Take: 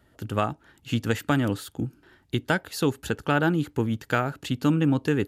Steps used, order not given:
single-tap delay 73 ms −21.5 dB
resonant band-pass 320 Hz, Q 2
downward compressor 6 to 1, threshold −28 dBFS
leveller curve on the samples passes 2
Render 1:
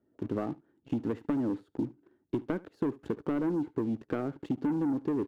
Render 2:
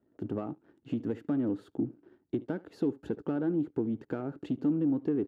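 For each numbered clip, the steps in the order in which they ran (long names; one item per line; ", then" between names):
resonant band-pass, then leveller curve on the samples, then downward compressor, then single-tap delay
downward compressor, then single-tap delay, then leveller curve on the samples, then resonant band-pass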